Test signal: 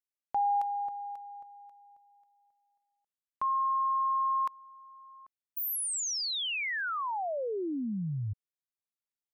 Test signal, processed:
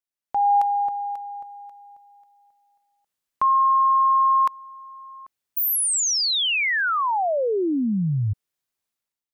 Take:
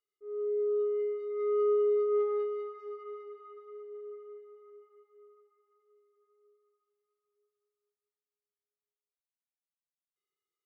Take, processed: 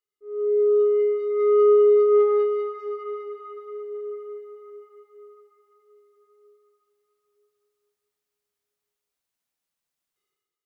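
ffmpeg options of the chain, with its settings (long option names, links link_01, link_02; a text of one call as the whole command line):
ffmpeg -i in.wav -af "dynaudnorm=framelen=110:gausssize=7:maxgain=11dB" out.wav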